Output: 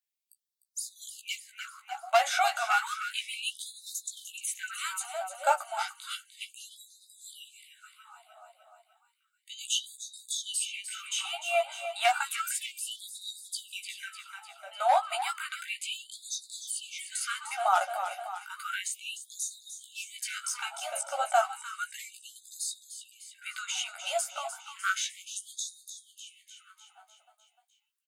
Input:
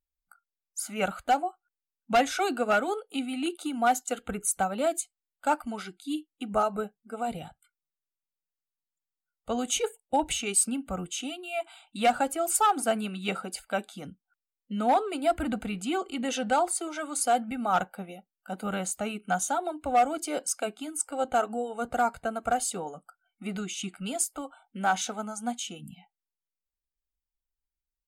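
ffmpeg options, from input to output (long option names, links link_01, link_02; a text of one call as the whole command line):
ffmpeg -i in.wav -filter_complex "[0:a]asplit=2[link_01][link_02];[link_02]adelay=16,volume=-4.5dB[link_03];[link_01][link_03]amix=inputs=2:normalize=0,acrossover=split=680|4600[link_04][link_05][link_06];[link_04]acompressor=threshold=-31dB:ratio=4[link_07];[link_05]acompressor=threshold=-26dB:ratio=4[link_08];[link_06]acompressor=threshold=-40dB:ratio=4[link_09];[link_07][link_08][link_09]amix=inputs=3:normalize=0,asplit=2[link_10][link_11];[link_11]aecho=0:1:301|602|903|1204|1505|1806|2107:0.316|0.187|0.11|0.0649|0.0383|0.0226|0.0133[link_12];[link_10][link_12]amix=inputs=2:normalize=0,afftfilt=real='re*gte(b*sr/1024,530*pow(3600/530,0.5+0.5*sin(2*PI*0.32*pts/sr)))':imag='im*gte(b*sr/1024,530*pow(3600/530,0.5+0.5*sin(2*PI*0.32*pts/sr)))':win_size=1024:overlap=0.75,volume=3.5dB" out.wav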